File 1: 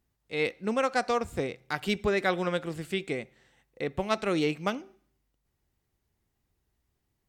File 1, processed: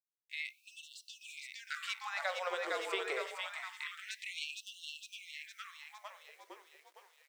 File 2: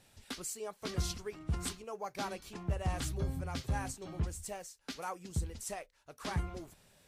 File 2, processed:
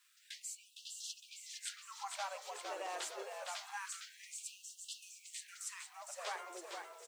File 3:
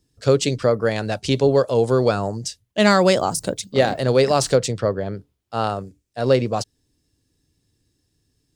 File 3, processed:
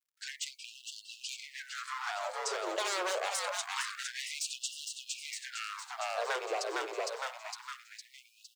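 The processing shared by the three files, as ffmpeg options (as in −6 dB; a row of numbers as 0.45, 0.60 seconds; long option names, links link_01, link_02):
-filter_complex "[0:a]aeval=exprs='0.158*(abs(mod(val(0)/0.158+3,4)-2)-1)':channel_layout=same,acrossover=split=380 7200:gain=0.0708 1 0.178[link_01][link_02][link_03];[link_01][link_02][link_03]amix=inputs=3:normalize=0,aexciter=amount=2.2:drive=3.2:freq=7000,lowshelf=frequency=85:gain=-7.5,asplit=2[link_04][link_05];[link_05]asplit=7[link_06][link_07][link_08][link_09][link_10][link_11][link_12];[link_06]adelay=459,afreqshift=-63,volume=-5dB[link_13];[link_07]adelay=918,afreqshift=-126,volume=-10.2dB[link_14];[link_08]adelay=1377,afreqshift=-189,volume=-15.4dB[link_15];[link_09]adelay=1836,afreqshift=-252,volume=-20.6dB[link_16];[link_10]adelay=2295,afreqshift=-315,volume=-25.8dB[link_17];[link_11]adelay=2754,afreqshift=-378,volume=-31dB[link_18];[link_12]adelay=3213,afreqshift=-441,volume=-36.2dB[link_19];[link_13][link_14][link_15][link_16][link_17][link_18][link_19]amix=inputs=7:normalize=0[link_20];[link_04][link_20]amix=inputs=2:normalize=0,acompressor=threshold=-30dB:ratio=6,bandreject=frequency=75.44:width_type=h:width=4,bandreject=frequency=150.88:width_type=h:width=4,bandreject=frequency=226.32:width_type=h:width=4,bandreject=frequency=301.76:width_type=h:width=4,bandreject=frequency=377.2:width_type=h:width=4,bandreject=frequency=452.64:width_type=h:width=4,bandreject=frequency=528.08:width_type=h:width=4,bandreject=frequency=603.52:width_type=h:width=4,bandreject=frequency=678.96:width_type=h:width=4,bandreject=frequency=754.4:width_type=h:width=4,bandreject=frequency=829.84:width_type=h:width=4,bandreject=frequency=905.28:width_type=h:width=4,bandreject=frequency=980.72:width_type=h:width=4,bandreject=frequency=1056.16:width_type=h:width=4,bandreject=frequency=1131.6:width_type=h:width=4,bandreject=frequency=1207.04:width_type=h:width=4,bandreject=frequency=1282.48:width_type=h:width=4,bandreject=frequency=1357.92:width_type=h:width=4,bandreject=frequency=1433.36:width_type=h:width=4,bandreject=frequency=1508.8:width_type=h:width=4,bandreject=frequency=1584.24:width_type=h:width=4,bandreject=frequency=1659.68:width_type=h:width=4,bandreject=frequency=1735.12:width_type=h:width=4,bandreject=frequency=1810.56:width_type=h:width=4,bandreject=frequency=1886:width_type=h:width=4,bandreject=frequency=1961.44:width_type=h:width=4,bandreject=frequency=2036.88:width_type=h:width=4,bandreject=frequency=2112.32:width_type=h:width=4,bandreject=frequency=2187.76:width_type=h:width=4,bandreject=frequency=2263.2:width_type=h:width=4,bandreject=frequency=2338.64:width_type=h:width=4,acrusher=bits=10:mix=0:aa=0.000001,dynaudnorm=framelen=340:gausssize=11:maxgain=3.5dB,afftfilt=real='re*gte(b*sr/1024,320*pow(2700/320,0.5+0.5*sin(2*PI*0.26*pts/sr)))':imag='im*gte(b*sr/1024,320*pow(2700/320,0.5+0.5*sin(2*PI*0.26*pts/sr)))':win_size=1024:overlap=0.75,volume=-4dB"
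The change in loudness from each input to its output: −11.0, −6.0, −17.0 LU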